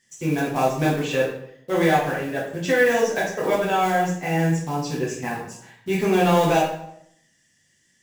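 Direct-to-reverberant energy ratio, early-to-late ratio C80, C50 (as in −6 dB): −5.5 dB, 7.5 dB, 4.0 dB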